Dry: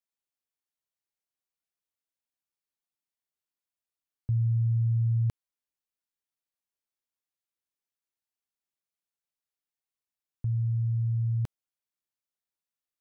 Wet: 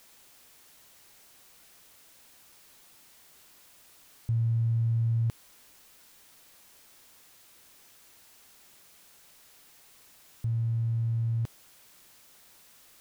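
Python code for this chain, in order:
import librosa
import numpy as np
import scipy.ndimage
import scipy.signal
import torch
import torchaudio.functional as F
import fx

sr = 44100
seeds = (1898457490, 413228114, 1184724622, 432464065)

y = x + 0.5 * 10.0 ** (-46.5 / 20.0) * np.sign(x)
y = F.gain(torch.from_numpy(y), -1.5).numpy()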